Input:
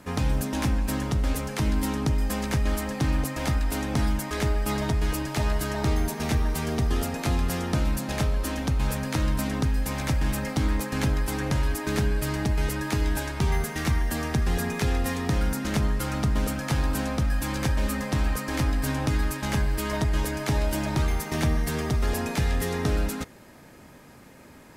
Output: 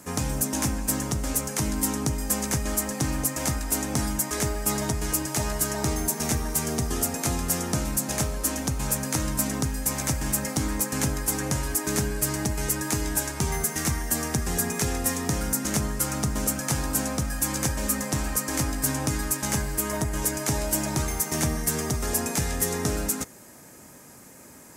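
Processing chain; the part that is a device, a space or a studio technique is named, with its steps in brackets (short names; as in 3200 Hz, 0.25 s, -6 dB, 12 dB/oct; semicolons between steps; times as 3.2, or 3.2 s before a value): budget condenser microphone (HPF 99 Hz 6 dB/oct; resonant high shelf 5100 Hz +10 dB, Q 1.5); 19.68–20.22 dynamic EQ 4600 Hz, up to -5 dB, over -42 dBFS, Q 0.88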